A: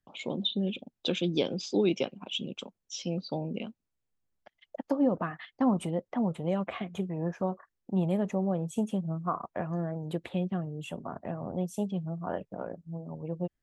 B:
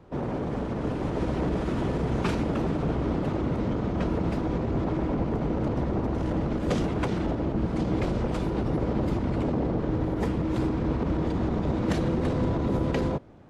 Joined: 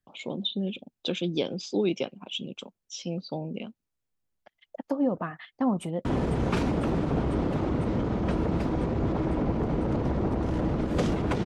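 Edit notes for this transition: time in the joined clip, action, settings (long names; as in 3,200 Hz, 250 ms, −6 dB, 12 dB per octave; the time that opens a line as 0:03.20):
A
0:05.45–0:06.05: delay throw 500 ms, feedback 80%, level −10 dB
0:06.05: continue with B from 0:01.77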